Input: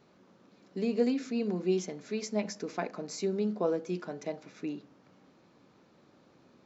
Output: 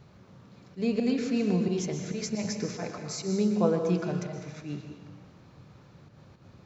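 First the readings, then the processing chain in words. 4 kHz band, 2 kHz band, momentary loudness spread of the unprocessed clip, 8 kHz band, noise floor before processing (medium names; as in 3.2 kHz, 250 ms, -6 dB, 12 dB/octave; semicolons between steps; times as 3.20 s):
+5.0 dB, +3.0 dB, 10 LU, no reading, -63 dBFS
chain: resonant low shelf 170 Hz +14 dB, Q 1.5; slow attack 105 ms; plate-style reverb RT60 1.2 s, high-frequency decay 1×, pre-delay 105 ms, DRR 4.5 dB; trim +4.5 dB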